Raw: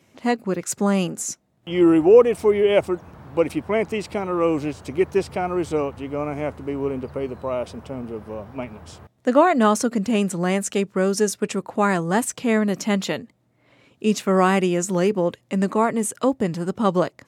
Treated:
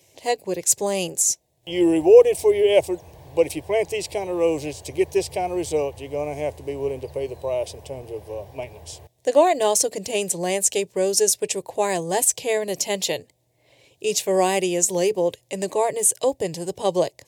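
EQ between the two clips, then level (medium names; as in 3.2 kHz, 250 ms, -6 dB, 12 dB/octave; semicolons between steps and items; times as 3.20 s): treble shelf 4 kHz +10 dB; static phaser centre 550 Hz, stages 4; +1.5 dB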